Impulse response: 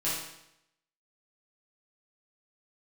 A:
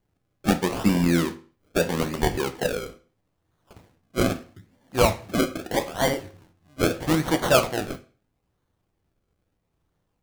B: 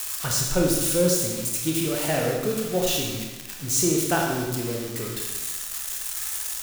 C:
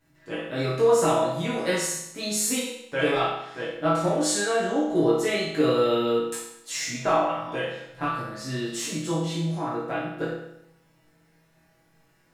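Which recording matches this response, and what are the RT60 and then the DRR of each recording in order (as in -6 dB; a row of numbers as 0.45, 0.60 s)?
C; 0.40, 1.2, 0.80 s; 8.0, -1.0, -10.0 dB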